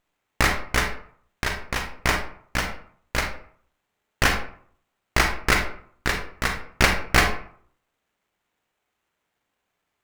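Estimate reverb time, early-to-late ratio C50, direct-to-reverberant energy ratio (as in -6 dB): 0.55 s, 6.5 dB, 4.5 dB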